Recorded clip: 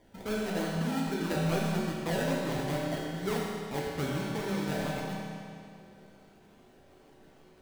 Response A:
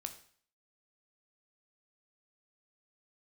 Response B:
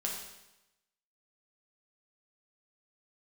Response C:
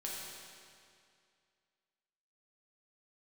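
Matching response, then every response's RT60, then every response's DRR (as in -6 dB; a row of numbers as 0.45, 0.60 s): C; 0.50, 0.95, 2.3 s; 7.0, -2.0, -4.5 dB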